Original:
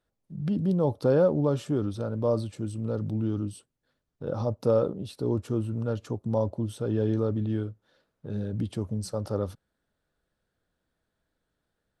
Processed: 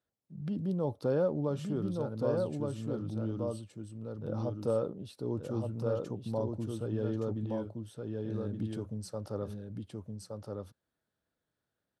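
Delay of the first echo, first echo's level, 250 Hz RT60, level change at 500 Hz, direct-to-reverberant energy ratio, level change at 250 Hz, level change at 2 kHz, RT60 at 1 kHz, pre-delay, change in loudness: 1,169 ms, −3.5 dB, no reverb audible, −6.0 dB, no reverb audible, −6.0 dB, −6.0 dB, no reverb audible, no reverb audible, −7.0 dB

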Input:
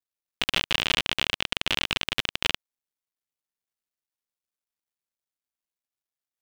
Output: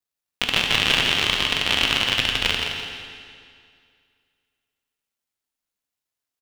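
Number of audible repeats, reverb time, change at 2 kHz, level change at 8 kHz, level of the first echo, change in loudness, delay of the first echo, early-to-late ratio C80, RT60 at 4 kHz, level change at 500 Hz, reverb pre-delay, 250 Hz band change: 2, 2.1 s, +6.5 dB, +6.5 dB, −7.0 dB, +6.5 dB, 169 ms, 2.0 dB, 2.0 s, +6.0 dB, 12 ms, +6.5 dB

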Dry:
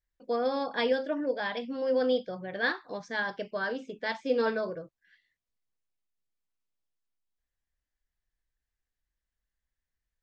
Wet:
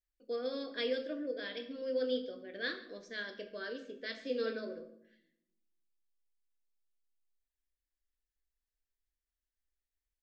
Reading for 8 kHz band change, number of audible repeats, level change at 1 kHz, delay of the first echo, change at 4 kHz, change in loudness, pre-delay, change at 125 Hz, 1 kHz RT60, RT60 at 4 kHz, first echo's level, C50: can't be measured, 1, −17.5 dB, 140 ms, −3.5 dB, −8.0 dB, 13 ms, below −10 dB, 0.65 s, 0.50 s, −19.0 dB, 11.0 dB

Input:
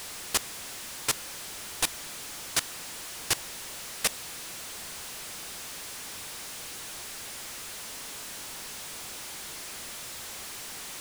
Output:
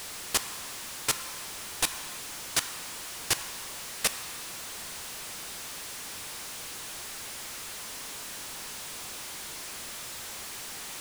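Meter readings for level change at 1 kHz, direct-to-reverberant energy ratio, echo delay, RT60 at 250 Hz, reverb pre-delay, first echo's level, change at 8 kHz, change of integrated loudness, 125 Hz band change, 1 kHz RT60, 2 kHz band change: +1.0 dB, 8.5 dB, no echo audible, 1.9 s, 7 ms, no echo audible, 0.0 dB, +0.5 dB, 0.0 dB, 2.0 s, +0.5 dB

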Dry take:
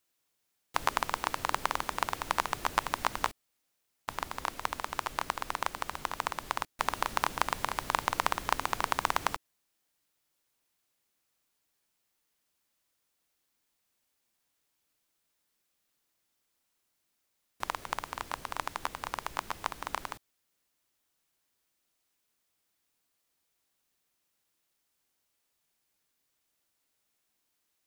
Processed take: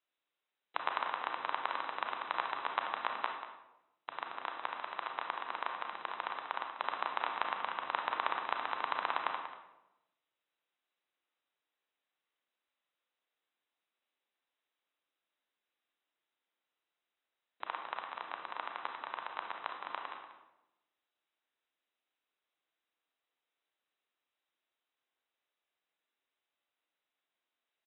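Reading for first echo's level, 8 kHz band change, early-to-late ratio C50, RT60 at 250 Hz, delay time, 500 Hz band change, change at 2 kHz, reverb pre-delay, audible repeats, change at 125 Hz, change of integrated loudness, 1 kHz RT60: −11.5 dB, below −35 dB, 4.5 dB, 1.1 s, 188 ms, −5.0 dB, −4.0 dB, 30 ms, 1, below −20 dB, −4.5 dB, 0.85 s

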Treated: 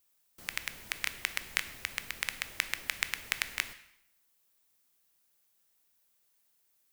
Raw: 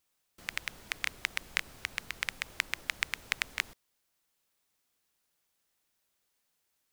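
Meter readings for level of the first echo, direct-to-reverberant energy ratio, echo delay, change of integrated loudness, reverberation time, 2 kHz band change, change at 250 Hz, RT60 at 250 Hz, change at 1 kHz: no echo audible, 11.0 dB, no echo audible, +0.5 dB, 0.80 s, −0.5 dB, −0.5 dB, 0.80 s, −0.5 dB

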